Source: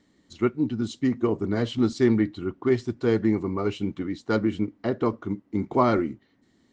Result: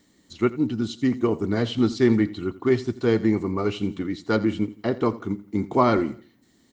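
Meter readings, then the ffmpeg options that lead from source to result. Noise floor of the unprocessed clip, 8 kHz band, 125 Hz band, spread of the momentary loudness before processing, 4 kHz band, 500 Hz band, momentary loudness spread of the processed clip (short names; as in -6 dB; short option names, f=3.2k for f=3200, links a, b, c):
-65 dBFS, n/a, +1.5 dB, 8 LU, +4.0 dB, +1.5 dB, 8 LU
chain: -filter_complex "[0:a]aemphasis=mode=production:type=50fm,aecho=1:1:85|170|255:0.119|0.0464|0.0181,acrossover=split=5300[a][b];[b]acompressor=threshold=-60dB:ratio=4:attack=1:release=60[c];[a][c]amix=inputs=2:normalize=0,volume=2dB"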